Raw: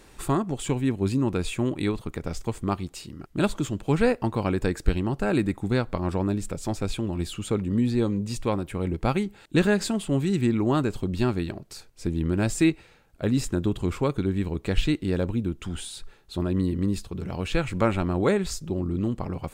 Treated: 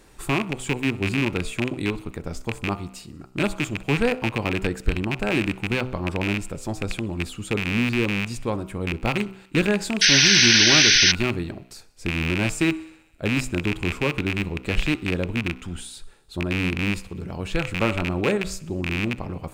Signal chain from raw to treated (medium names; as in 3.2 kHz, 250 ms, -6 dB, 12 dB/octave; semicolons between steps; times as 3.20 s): rattle on loud lows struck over -28 dBFS, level -12 dBFS; peaking EQ 3.2 kHz -2 dB 1.5 oct; thinning echo 63 ms, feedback 71%, high-pass 630 Hz, level -22.5 dB; painted sound noise, 10.01–11.12 s, 1.4–6.3 kHz -16 dBFS; de-hum 63.62 Hz, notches 23